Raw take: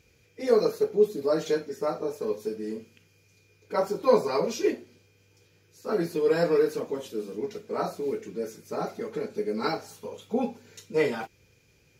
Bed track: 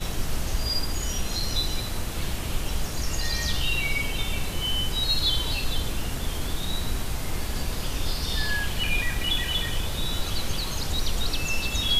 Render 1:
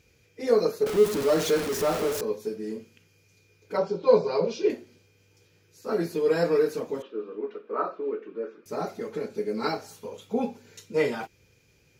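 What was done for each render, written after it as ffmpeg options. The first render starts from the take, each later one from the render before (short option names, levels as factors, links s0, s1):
-filter_complex "[0:a]asettb=1/sr,asplit=3[s0][s1][s2];[s0]atrim=end=0.864[s3];[s1]atrim=start=0.86:end=2.21,asetpts=PTS-STARTPTS,afade=t=in:d=0.004:c=qsin,afade=t=out:st=1.346:d=0.004:c=qsin,aeval=exprs='val(0)+0.5*0.0501*sgn(val(0))':c=same[s4];[s2]atrim=start=2.206[s5];[s3][s4]acrossfade=d=0.004:c1=hsin:c2=qsin[s6];[s6][s5]acrossfade=d=0.004:c1=qsin:c2=hsin,asettb=1/sr,asplit=3[s7][s8][s9];[s7]atrim=end=3.774[s10];[s8]atrim=start=3.77:end=4.7,asetpts=PTS-STARTPTS,afade=t=in:d=0.004:c=qsin,afade=t=out:st=0.926:d=0.004:c=qsin,highpass=130,equalizer=f=170:t=q:w=4:g=6,equalizer=f=270:t=q:w=4:g=-8,equalizer=f=470:t=q:w=4:g=4,equalizer=f=760:t=q:w=4:g=-3,equalizer=f=1200:t=q:w=4:g=-5,equalizer=f=1900:t=q:w=4:g=-9,lowpass=f=5000:w=0.5412,lowpass=f=5000:w=1.3066[s11];[s9]atrim=start=4.696[s12];[s10][s11]acrossfade=d=0.004:c1=hsin:c2=qsin[s13];[s13][s12]acrossfade=d=0.004:c1=qsin:c2=hsin,asettb=1/sr,asplit=3[s14][s15][s16];[s14]atrim=end=7.024[s17];[s15]atrim=start=7.02:end=8.66,asetpts=PTS-STARTPTS,afade=t=in:d=0.004:c=qsin,afade=t=out:st=1.636:d=0.004:c=qsin,highpass=f=270:w=0.5412,highpass=f=270:w=1.3066,equalizer=f=770:t=q:w=4:g=-6,equalizer=f=1200:t=q:w=4:g=9,equalizer=f=2100:t=q:w=4:g=-8,lowpass=f=2700:w=0.5412,lowpass=f=2700:w=1.3066[s18];[s16]atrim=start=8.656[s19];[s17][s18]acrossfade=d=0.004:c1=hsin:c2=qsin[s20];[s20][s19]acrossfade=d=0.004:c1=qsin:c2=hsin"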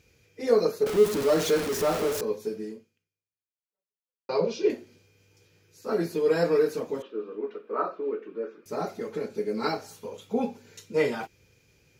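-filter_complex "[0:a]asplit=2[s0][s1];[s0]atrim=end=4.29,asetpts=PTS-STARTPTS,afade=t=out:st=2.62:d=1.67:c=exp[s2];[s1]atrim=start=4.29,asetpts=PTS-STARTPTS,afade=t=in:d=0.004:c=hsin[s3];[s2][s3]concat=n=2:v=0:a=1"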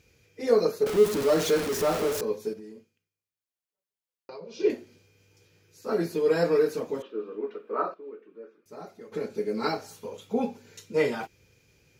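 -filter_complex "[0:a]asettb=1/sr,asplit=3[s0][s1][s2];[s0]atrim=end=2.534[s3];[s1]atrim=start=2.53:end=4.6,asetpts=PTS-STARTPTS,afade=t=in:d=0.004:c=qsin,afade=t=out:st=2.066:d=0.004:c=qsin,acompressor=threshold=0.01:ratio=6:attack=3.2:release=140:knee=1:detection=peak[s4];[s2]atrim=start=4.596[s5];[s3][s4]acrossfade=d=0.004:c1=hsin:c2=qsin[s6];[s6][s5]acrossfade=d=0.004:c1=qsin:c2=hsin,asplit=3[s7][s8][s9];[s7]atrim=end=7.942[s10];[s8]atrim=start=7.938:end=9.122,asetpts=PTS-STARTPTS,volume=0.266[s11];[s9]atrim=start=9.118[s12];[s10][s11]acrossfade=d=0.004:c1=hsin:c2=hsin[s13];[s13][s12]acrossfade=d=0.004:c1=hsin:c2=hsin"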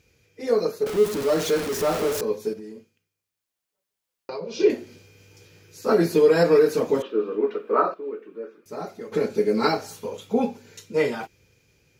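-af "dynaudnorm=f=580:g=9:m=3.76,alimiter=limit=0.376:level=0:latency=1:release=233"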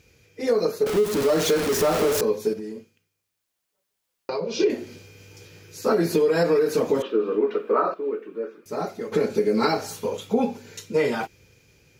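-filter_complex "[0:a]asplit=2[s0][s1];[s1]alimiter=limit=0.15:level=0:latency=1,volume=0.75[s2];[s0][s2]amix=inputs=2:normalize=0,acompressor=threshold=0.141:ratio=5"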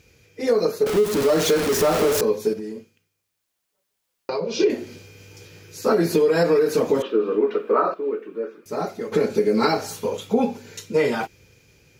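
-af "volume=1.26"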